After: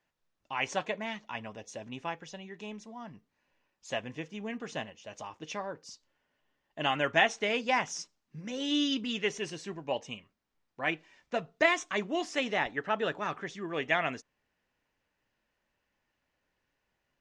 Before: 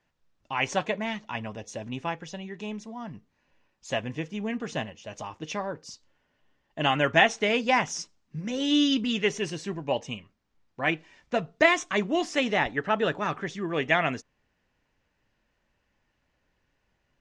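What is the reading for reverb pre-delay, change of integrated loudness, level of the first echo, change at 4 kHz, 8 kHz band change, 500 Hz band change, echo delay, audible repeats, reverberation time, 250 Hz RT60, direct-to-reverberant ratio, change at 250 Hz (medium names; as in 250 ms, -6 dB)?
no reverb, -5.0 dB, no echo, -4.5 dB, -4.5 dB, -5.5 dB, no echo, no echo, no reverb, no reverb, no reverb, -7.5 dB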